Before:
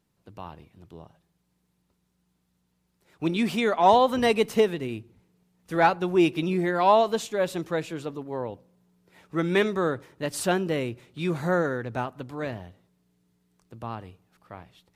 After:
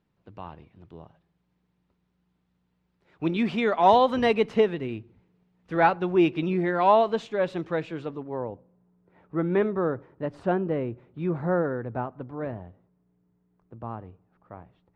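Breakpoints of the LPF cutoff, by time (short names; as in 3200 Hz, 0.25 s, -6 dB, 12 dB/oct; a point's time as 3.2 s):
3.57 s 3000 Hz
4 s 4900 Hz
4.4 s 2900 Hz
8.1 s 2900 Hz
8.51 s 1200 Hz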